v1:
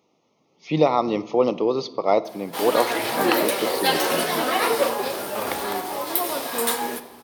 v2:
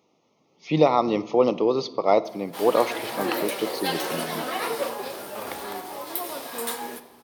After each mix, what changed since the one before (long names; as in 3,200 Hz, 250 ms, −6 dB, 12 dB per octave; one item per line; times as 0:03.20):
background −7.0 dB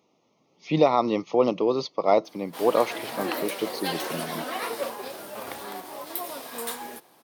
reverb: off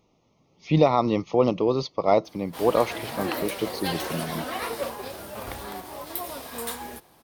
master: remove high-pass filter 220 Hz 12 dB per octave